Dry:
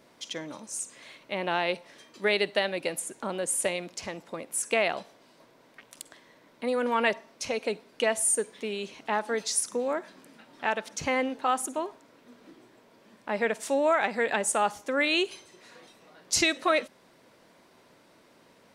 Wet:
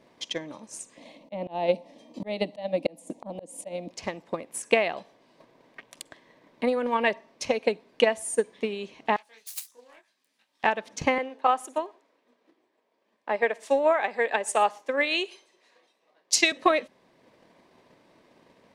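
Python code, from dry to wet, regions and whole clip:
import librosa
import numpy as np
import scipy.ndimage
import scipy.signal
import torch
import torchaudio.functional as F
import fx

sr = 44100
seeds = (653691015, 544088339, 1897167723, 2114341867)

y = fx.chain(x, sr, fx.peak_eq(hz=330.0, db=13.0, octaves=2.3),
    fx.fixed_phaser(hz=390.0, stages=6),
    fx.auto_swell(attack_ms=324.0), at=(0.97, 3.91))
y = fx.chain(y, sr, fx.self_delay(depth_ms=0.22),
    fx.pre_emphasis(coefficient=0.97),
    fx.detune_double(cents=52), at=(9.16, 10.64))
y = fx.chain(y, sr, fx.highpass(hz=380.0, slope=12),
    fx.echo_single(ms=120, db=-23.0),
    fx.band_widen(depth_pct=40), at=(11.18, 16.52))
y = fx.lowpass(y, sr, hz=3200.0, slope=6)
y = fx.notch(y, sr, hz=1400.0, q=6.3)
y = fx.transient(y, sr, attack_db=8, sustain_db=-2)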